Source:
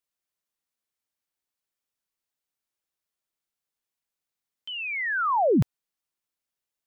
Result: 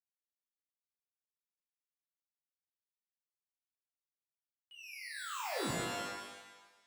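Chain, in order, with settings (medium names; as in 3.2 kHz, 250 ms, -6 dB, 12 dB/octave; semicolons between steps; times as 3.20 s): companding laws mixed up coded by A; Doppler pass-by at 1.90 s, 18 m/s, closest 8 m; pitch-shifted reverb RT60 1.1 s, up +12 st, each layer -2 dB, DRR -2.5 dB; trim -4 dB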